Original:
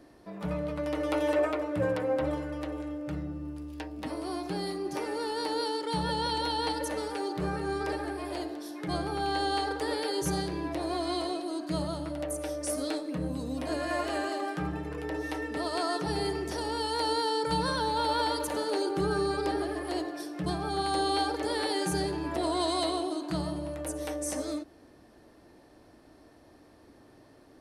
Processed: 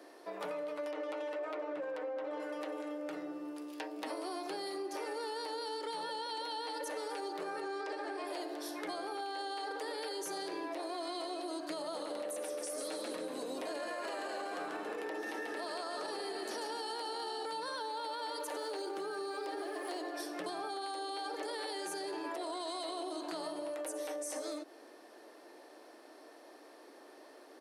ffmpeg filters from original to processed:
-filter_complex "[0:a]asettb=1/sr,asplit=3[s0][s1][s2];[s0]atrim=end=0.914[s3];[s1]atrim=start=0.91:end=2.4,asetpts=PTS-STARTPTS,afade=t=in:d=0.004:c=qsin,afade=t=out:st=1.486:d=0.004:c=qsin,adynamicsmooth=sensitivity=6.5:basefreq=3500[s4];[s2]atrim=start=2.396[s5];[s3][s4]acrossfade=d=0.004:c1=hsin:c2=qsin[s6];[s6][s5]acrossfade=d=0.004:c1=qsin:c2=hsin,asettb=1/sr,asplit=3[s7][s8][s9];[s7]atrim=end=7.614[s10];[s8]atrim=start=7.61:end=8.27,asetpts=PTS-STARTPTS,afade=t=in:d=0.004:c=qsin,afade=t=out:st=0.656:d=0.004:c=qsin,lowpass=f=8100:w=0.5412,lowpass=f=8100:w=1.3066[s11];[s9]atrim=start=8.266[s12];[s10][s11]acrossfade=d=0.004:c1=hsin:c2=qsin[s13];[s13][s12]acrossfade=d=0.004:c1=qsin:c2=hsin,asplit=3[s14][s15][s16];[s14]afade=t=out:st=11.93:d=0.02[s17];[s15]asplit=7[s18][s19][s20][s21][s22][s23][s24];[s19]adelay=139,afreqshift=-83,volume=0.562[s25];[s20]adelay=278,afreqshift=-166,volume=0.282[s26];[s21]adelay=417,afreqshift=-249,volume=0.141[s27];[s22]adelay=556,afreqshift=-332,volume=0.07[s28];[s23]adelay=695,afreqshift=-415,volume=0.0351[s29];[s24]adelay=834,afreqshift=-498,volume=0.0176[s30];[s18][s25][s26][s27][s28][s29][s30]amix=inputs=7:normalize=0,afade=t=in:st=11.93:d=0.02,afade=t=out:st=17.45:d=0.02[s31];[s16]afade=t=in:st=17.45:d=0.02[s32];[s17][s31][s32]amix=inputs=3:normalize=0,asettb=1/sr,asplit=3[s33][s34][s35];[s33]atrim=end=18.584[s36];[s34]atrim=start=18.58:end=19.99,asetpts=PTS-STARTPTS,afade=t=in:d=0.004:c=qsin,afade=t=out:st=1.406:d=0.004:c=qsin,aeval=exprs='sgn(val(0))*max(abs(val(0))-0.00251,0)':c=same[s37];[s35]atrim=start=19.986[s38];[s36][s37]acrossfade=d=0.004:c1=hsin:c2=qsin[s39];[s39][s38]acrossfade=d=0.004:c1=qsin:c2=hsin,highpass=f=360:w=0.5412,highpass=f=360:w=1.3066,alimiter=level_in=1.78:limit=0.0631:level=0:latency=1:release=47,volume=0.562,acompressor=threshold=0.00891:ratio=6,volume=1.58"

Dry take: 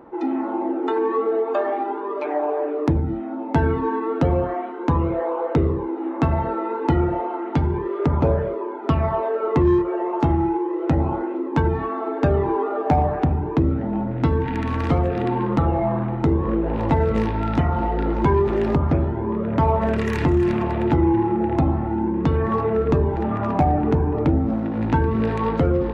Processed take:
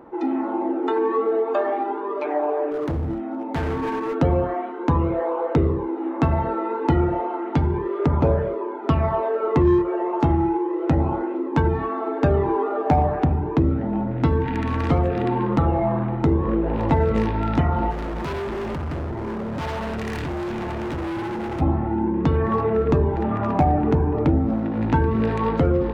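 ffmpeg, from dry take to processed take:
-filter_complex "[0:a]asettb=1/sr,asplit=3[s0][s1][s2];[s0]atrim=end=2.714[s3];[s1]atrim=start=2.71:end=4.15,asetpts=PTS-STARTPTS,afade=t=in:d=0.004:c=qsin,afade=t=out:st=1.436:d=0.004:c=qsin,asoftclip=type=hard:threshold=0.0794[s4];[s2]atrim=start=4.146[s5];[s3][s4]acrossfade=d=0.004:c1=hsin:c2=qsin[s6];[s6][s5]acrossfade=d=0.004:c1=qsin:c2=hsin,asplit=3[s7][s8][s9];[s7]afade=t=out:st=17.9:d=0.02[s10];[s8]volume=20,asoftclip=hard,volume=0.0501,afade=t=in:st=17.9:d=0.02,afade=t=out:st=21.6:d=0.02[s11];[s9]afade=t=in:st=21.6:d=0.02[s12];[s10][s11][s12]amix=inputs=3:normalize=0"

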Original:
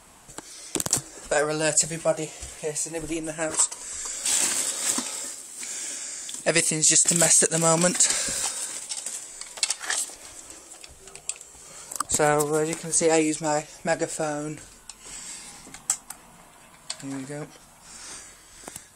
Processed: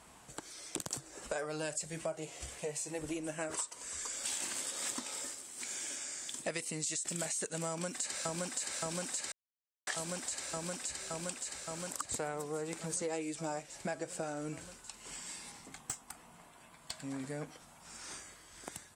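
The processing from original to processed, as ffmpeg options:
-filter_complex "[0:a]asplit=2[s0][s1];[s1]afade=t=in:st=7.68:d=0.01,afade=t=out:st=8.59:d=0.01,aecho=0:1:570|1140|1710|2280|2850|3420|3990|4560|5130|5700|6270|6840:0.891251|0.668438|0.501329|0.375996|0.281997|0.211498|0.158624|0.118968|0.0892257|0.0669193|0.0501895|0.0376421[s2];[s0][s2]amix=inputs=2:normalize=0,asettb=1/sr,asplit=3[s3][s4][s5];[s3]atrim=end=15.524[s6];[s4]atrim=start=15.52:end=17.2,asetpts=PTS-STARTPTS,afade=t=in:d=0.004:c=qsin,afade=t=out:st=1.676:d=0.004:c=qsin,aeval=exprs='(tanh(7.94*val(0)+0.45)-tanh(0.45))/7.94':c=same[s7];[s5]atrim=start=17.196[s8];[s6][s7]acrossfade=d=0.004:c1=hsin:c2=qsin[s9];[s9][s8]acrossfade=d=0.004:c1=qsin:c2=hsin,asplit=3[s10][s11][s12];[s10]atrim=end=9.32,asetpts=PTS-STARTPTS,afade=t=out:st=9.316:d=0.004:c=hsin[s13];[s11]atrim=start=9.32:end=9.87,asetpts=PTS-STARTPTS,volume=0[s14];[s12]atrim=start=9.87,asetpts=PTS-STARTPTS,afade=t=in:d=0.004:c=hsin[s15];[s13][s14][s15]concat=n=3:v=0:a=1,highpass=45,highshelf=f=7600:g=-5.5,acompressor=threshold=0.0316:ratio=6,volume=0.562"

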